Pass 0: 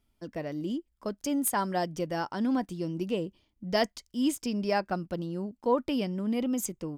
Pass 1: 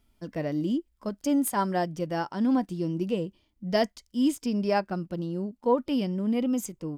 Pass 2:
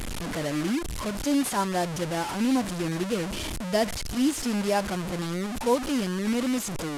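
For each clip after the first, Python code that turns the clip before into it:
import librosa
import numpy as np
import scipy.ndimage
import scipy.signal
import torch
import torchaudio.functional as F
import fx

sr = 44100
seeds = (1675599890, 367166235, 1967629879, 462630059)

y1 = fx.hpss(x, sr, part='percussive', gain_db=-7)
y1 = fx.rider(y1, sr, range_db=5, speed_s=2.0)
y1 = F.gain(torch.from_numpy(y1), 3.0).numpy()
y2 = fx.delta_mod(y1, sr, bps=64000, step_db=-26.0)
y2 = fx.quant_dither(y2, sr, seeds[0], bits=10, dither='none')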